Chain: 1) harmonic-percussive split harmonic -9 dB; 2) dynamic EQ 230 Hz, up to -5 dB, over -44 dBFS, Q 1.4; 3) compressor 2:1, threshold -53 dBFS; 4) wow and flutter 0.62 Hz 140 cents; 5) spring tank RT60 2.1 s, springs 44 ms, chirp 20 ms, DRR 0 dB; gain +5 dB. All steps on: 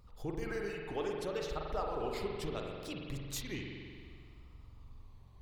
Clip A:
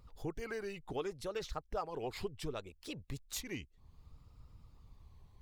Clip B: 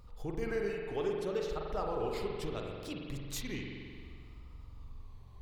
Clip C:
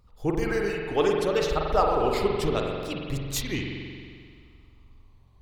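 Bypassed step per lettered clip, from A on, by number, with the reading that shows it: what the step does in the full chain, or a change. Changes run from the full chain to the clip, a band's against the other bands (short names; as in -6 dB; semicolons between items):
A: 5, 8 kHz band +3.0 dB; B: 1, 500 Hz band +2.5 dB; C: 3, mean gain reduction 9.0 dB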